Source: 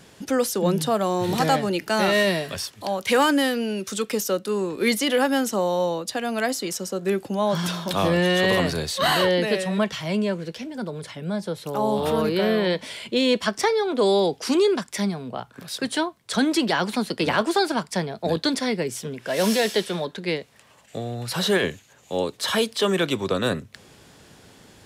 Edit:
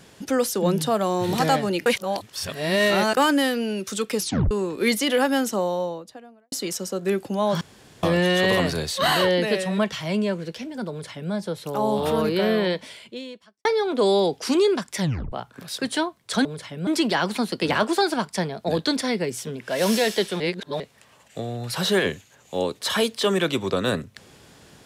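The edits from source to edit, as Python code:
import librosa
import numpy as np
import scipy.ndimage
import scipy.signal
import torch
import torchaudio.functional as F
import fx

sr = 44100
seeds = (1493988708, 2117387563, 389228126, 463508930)

y = fx.studio_fade_out(x, sr, start_s=5.4, length_s=1.12)
y = fx.edit(y, sr, fx.reverse_span(start_s=1.86, length_s=1.31),
    fx.tape_stop(start_s=4.18, length_s=0.33),
    fx.room_tone_fill(start_s=7.61, length_s=0.42),
    fx.duplicate(start_s=10.9, length_s=0.42, to_s=16.45),
    fx.fade_out_span(start_s=12.63, length_s=1.02, curve='qua'),
    fx.tape_stop(start_s=15.0, length_s=0.32),
    fx.reverse_span(start_s=19.98, length_s=0.4), tone=tone)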